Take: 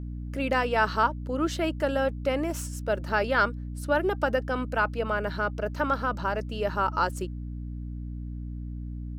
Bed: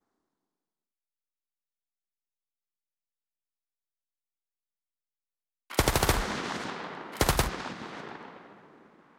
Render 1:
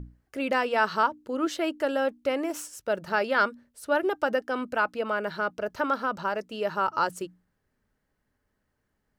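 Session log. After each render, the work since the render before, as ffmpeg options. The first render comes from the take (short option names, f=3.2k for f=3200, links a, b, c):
-af "bandreject=f=60:t=h:w=6,bandreject=f=120:t=h:w=6,bandreject=f=180:t=h:w=6,bandreject=f=240:t=h:w=6,bandreject=f=300:t=h:w=6"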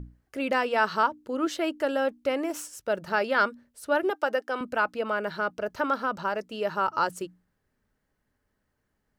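-filter_complex "[0:a]asettb=1/sr,asplit=3[a][b][c];[a]atrim=end=4.104[d];[b]atrim=start=4.1:end=4.61,asetpts=PTS-STARTPTS,afade=t=in:d=0.004:c=qsin,afade=t=out:st=0.506:d=0.004:c=qsin,highpass=350[e];[c]atrim=start=4.606[f];[d][e]acrossfade=d=0.004:c1=hsin:c2=qsin[g];[g][f]acrossfade=d=0.004:c1=qsin:c2=hsin"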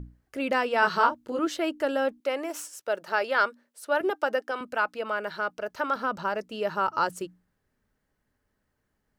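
-filter_complex "[0:a]asettb=1/sr,asplit=3[a][b][c];[a]atrim=end=0.804[d];[b]atrim=start=0.8:end=1.39,asetpts=PTS-STARTPTS,afade=t=in:d=0.004:c=qsin,afade=t=out:st=0.586:d=0.004:c=qsin,asplit=2[e][f];[f]adelay=25,volume=-2dB[g];[e][g]amix=inputs=2:normalize=0,atrim=end_sample=26019[h];[c]atrim=start=1.386[i];[d][h]acrossfade=d=0.004:c1=hsin:c2=qsin[j];[j][i]acrossfade=d=0.004:c1=qsin:c2=hsin,asettb=1/sr,asplit=3[k][l][m];[k]atrim=end=2.204[n];[l]atrim=start=2.2:end=4.01,asetpts=PTS-STARTPTS,afade=t=in:d=0.004:c=qsin,afade=t=out:st=1.806:d=0.004:c=qsin,highpass=400[o];[m]atrim=start=4.006[p];[n][o]acrossfade=d=0.004:c1=hsin:c2=qsin[q];[q][p]acrossfade=d=0.004:c1=qsin:c2=hsin,asettb=1/sr,asplit=3[r][s][t];[r]atrim=end=4.514[u];[s]atrim=start=4.51:end=5.96,asetpts=PTS-STARTPTS,afade=t=in:d=0.004:c=qsin,afade=t=out:st=1.446:d=0.004:c=qsin,lowshelf=f=300:g=-10[v];[t]atrim=start=5.956[w];[u][v]acrossfade=d=0.004:c1=hsin:c2=qsin[x];[x][w]acrossfade=d=0.004:c1=qsin:c2=hsin"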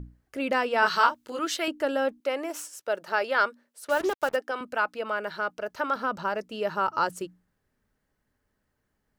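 -filter_complex "[0:a]asettb=1/sr,asplit=3[a][b][c];[a]atrim=end=0.864[d];[b]atrim=start=0.86:end=1.68,asetpts=PTS-STARTPTS,afade=t=in:d=0.004:c=qsin,afade=t=out:st=0.816:d=0.004:c=qsin,tiltshelf=f=970:g=-7[e];[c]atrim=start=1.676[f];[d][e]acrossfade=d=0.004:c1=hsin:c2=qsin[g];[g][f]acrossfade=d=0.004:c1=qsin:c2=hsin,asplit=3[h][i][j];[h]afade=t=out:st=3.87:d=0.02[k];[i]acrusher=bits=5:mix=0:aa=0.5,afade=t=in:st=3.87:d=0.02,afade=t=out:st=4.35:d=0.02[l];[j]afade=t=in:st=4.35:d=0.02[m];[k][l][m]amix=inputs=3:normalize=0"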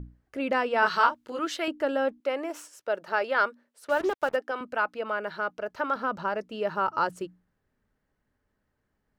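-af "highshelf=f=4.8k:g=-10.5"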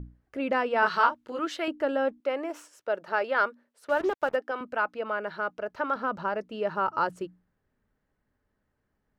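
-af "highshelf=f=4.2k:g=-7.5"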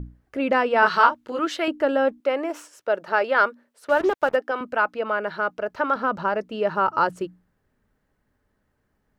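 -af "volume=6dB"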